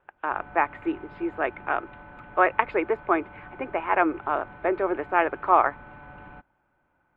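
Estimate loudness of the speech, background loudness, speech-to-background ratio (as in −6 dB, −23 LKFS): −26.0 LKFS, −46.0 LKFS, 20.0 dB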